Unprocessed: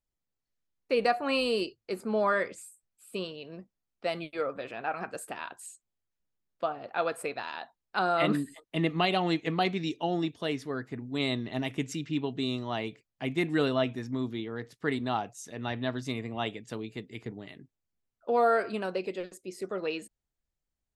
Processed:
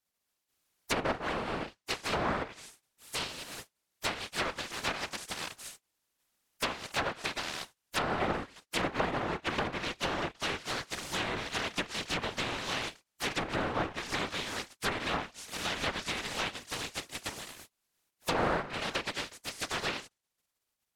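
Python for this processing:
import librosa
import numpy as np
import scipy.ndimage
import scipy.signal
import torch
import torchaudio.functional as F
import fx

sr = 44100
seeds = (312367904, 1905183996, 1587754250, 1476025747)

y = fx.spec_flatten(x, sr, power=0.14)
y = fx.whisperise(y, sr, seeds[0])
y = fx.env_lowpass_down(y, sr, base_hz=1200.0, full_db=-24.5)
y = F.gain(torch.from_numpy(y), 2.5).numpy()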